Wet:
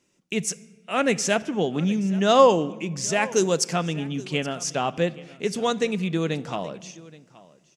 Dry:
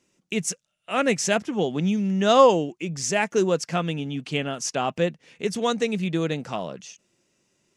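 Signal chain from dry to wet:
0:03.32–0:03.73: bass and treble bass 0 dB, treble +11 dB
single-tap delay 824 ms −20.5 dB
on a send at −17 dB: convolution reverb RT60 1.3 s, pre-delay 7 ms

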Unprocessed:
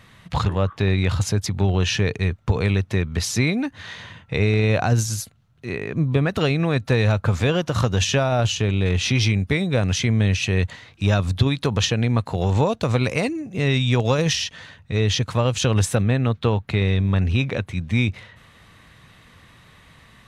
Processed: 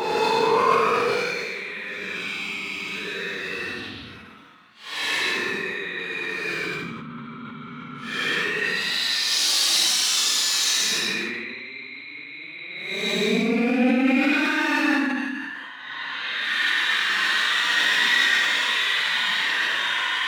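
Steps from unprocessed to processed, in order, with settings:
flat-topped bell 2,000 Hz +15 dB 2.5 octaves
compressor whose output falls as the input rises −20 dBFS, ratio −0.5
dynamic equaliser 420 Hz, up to +4 dB, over −38 dBFS, Q 2.1
asymmetric clip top −16.5 dBFS
high-pass filter 220 Hz 24 dB per octave
extreme stretch with random phases 13×, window 0.05 s, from 0:02.52
level that may fall only so fast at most 24 dB per second
level −3.5 dB

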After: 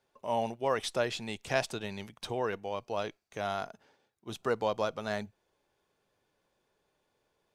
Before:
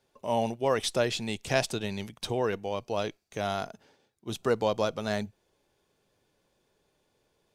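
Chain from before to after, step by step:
parametric band 1,200 Hz +6 dB 2.4 octaves
level −7 dB

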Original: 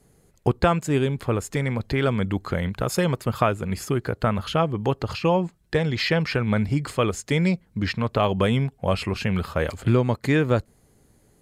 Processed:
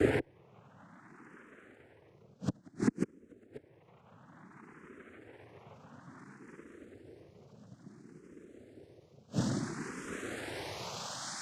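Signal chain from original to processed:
played backwards from end to start
extreme stretch with random phases 33×, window 0.05 s, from 0:01.27
gate with flip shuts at −17 dBFS, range −37 dB
cochlear-implant simulation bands 3
frequency shifter mixed with the dry sound +0.58 Hz
level +4 dB

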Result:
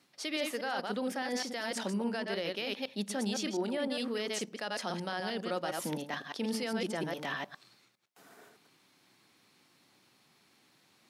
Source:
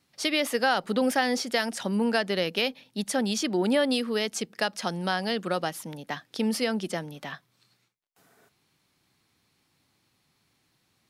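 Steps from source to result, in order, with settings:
delay that plays each chunk backwards 102 ms, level −5.5 dB
high-pass filter 190 Hz 12 dB per octave
high-shelf EQ 8,500 Hz −5 dB
reversed playback
downward compressor 12 to 1, threshold −34 dBFS, peak gain reduction 17.5 dB
reversed playback
brickwall limiter −29 dBFS, peak gain reduction 6 dB
on a send: convolution reverb RT60 0.50 s, pre-delay 3 ms, DRR 20 dB
on the sum: level +4.5 dB

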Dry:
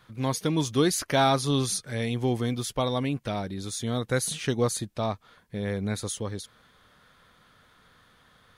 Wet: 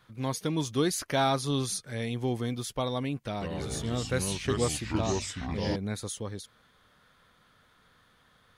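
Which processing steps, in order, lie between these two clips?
0:03.26–0:05.76: delay with pitch and tempo change per echo 145 ms, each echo −4 semitones, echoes 3
level −4 dB

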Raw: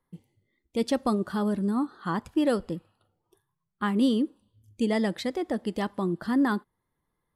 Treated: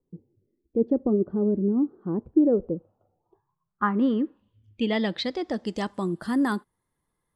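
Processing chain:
low-pass filter sweep 400 Hz → 9,600 Hz, 0:02.46–0:06.20

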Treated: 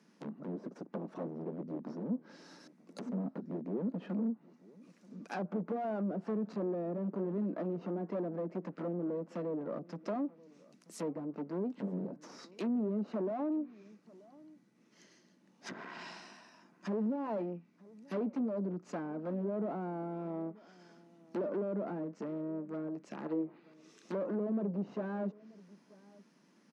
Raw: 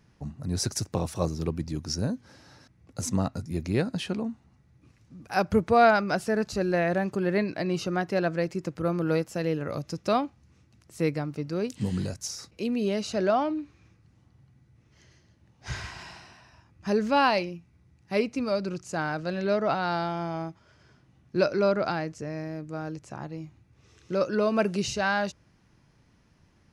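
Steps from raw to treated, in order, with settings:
tube saturation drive 34 dB, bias 0.65
bass and treble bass +5 dB, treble +10 dB
gain on a spectral selection 0:23.26–0:23.74, 320–5,100 Hz +11 dB
high-shelf EQ 3,300 Hz −10.5 dB
in parallel at −10 dB: wrap-around overflow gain 29 dB
on the sum: treble cut that deepens with the level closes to 520 Hz, closed at −29.5 dBFS
Butterworth high-pass 190 Hz 48 dB per octave
notch filter 780 Hz, Q 13
slap from a distant wall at 160 metres, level −22 dB

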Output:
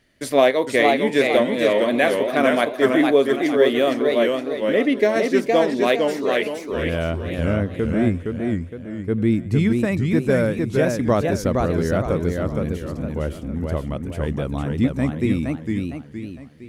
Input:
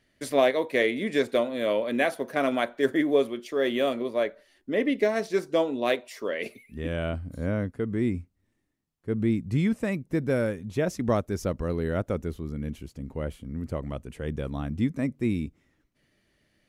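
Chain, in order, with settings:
feedback echo with a swinging delay time 461 ms, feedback 41%, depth 164 cents, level −3.5 dB
level +6 dB

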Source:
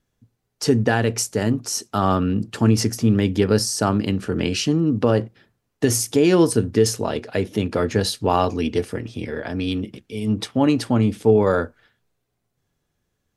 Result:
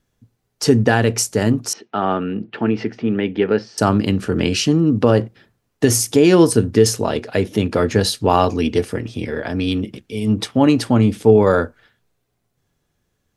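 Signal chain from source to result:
0:01.73–0:03.78: loudspeaker in its box 250–2,900 Hz, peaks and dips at 270 Hz −4 dB, 560 Hz −4 dB, 1,100 Hz −7 dB
level +4 dB

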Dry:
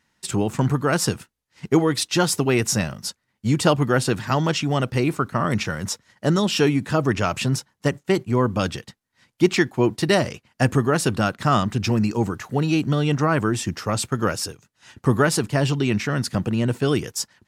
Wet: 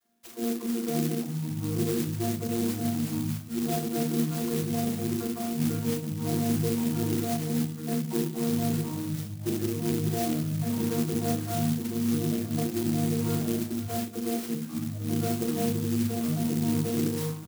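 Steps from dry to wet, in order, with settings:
channel vocoder with a chord as carrier bare fifth, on A#3
double-tracking delay 33 ms −4.5 dB
all-pass dispersion lows, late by 48 ms, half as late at 360 Hz
reversed playback
downward compressor 6 to 1, threshold −28 dBFS, peak gain reduction 19 dB
reversed playback
parametric band 940 Hz −8.5 dB 0.57 octaves
on a send at −5 dB: convolution reverb RT60 0.50 s, pre-delay 7 ms
on the sum: delay with pitch and tempo change per echo 317 ms, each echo −7 semitones, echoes 2
dynamic equaliser 1,800 Hz, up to −6 dB, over −52 dBFS, Q 1.3
converter with an unsteady clock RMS 0.13 ms

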